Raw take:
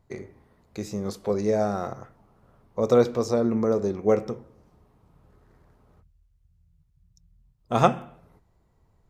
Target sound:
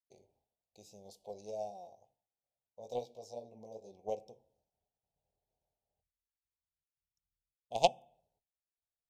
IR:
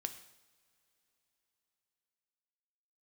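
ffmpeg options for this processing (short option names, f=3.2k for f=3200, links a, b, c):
-filter_complex "[0:a]asplit=3[a][b][c];[a]afade=t=out:st=1.69:d=0.02[d];[b]flanger=delay=15.5:depth=3.6:speed=2.3,afade=t=in:st=1.69:d=0.02,afade=t=out:st=3.91:d=0.02[e];[c]afade=t=in:st=3.91:d=0.02[f];[d][e][f]amix=inputs=3:normalize=0,agate=range=-33dB:threshold=-51dB:ratio=3:detection=peak,aeval=exprs='0.794*(cos(1*acos(clip(val(0)/0.794,-1,1)))-cos(1*PI/2))+0.224*(cos(3*acos(clip(val(0)/0.794,-1,1)))-cos(3*PI/2))':c=same,asuperstop=centerf=1500:order=8:qfactor=0.75,lowshelf=f=470:t=q:w=1.5:g=-12"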